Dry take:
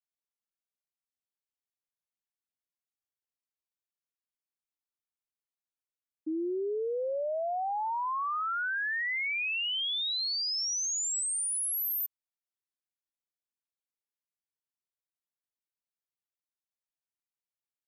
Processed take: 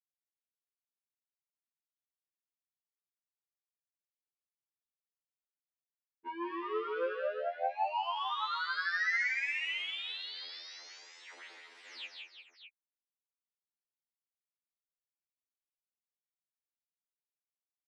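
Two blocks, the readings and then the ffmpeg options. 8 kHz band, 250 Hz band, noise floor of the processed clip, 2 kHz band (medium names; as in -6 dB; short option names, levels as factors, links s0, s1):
-27.5 dB, -8.5 dB, under -85 dBFS, -1.5 dB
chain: -af "dynaudnorm=f=150:g=7:m=2.51,adynamicequalizer=threshold=0.0112:dfrequency=680:dqfactor=1.6:tfrequency=680:tqfactor=1.6:attack=5:release=100:ratio=0.375:range=3.5:mode=cutabove:tftype=bell,aeval=exprs='0.0473*(abs(mod(val(0)/0.0473+3,4)-2)-1)':c=same,anlmdn=0.0631,aecho=1:1:169|178|205|354|427|613:0.631|0.188|0.299|0.398|0.133|0.376,adynamicsmooth=sensitivity=6.5:basefreq=3100,highpass=f=350:w=0.5412,highpass=f=350:w=1.3066,equalizer=f=640:t=q:w=4:g=-4,equalizer=f=1100:t=q:w=4:g=-3,equalizer=f=2000:t=q:w=4:g=9,lowpass=f=4000:w=0.5412,lowpass=f=4000:w=1.3066,afftfilt=real='re*2*eq(mod(b,4),0)':imag='im*2*eq(mod(b,4),0)':win_size=2048:overlap=0.75,volume=0.668"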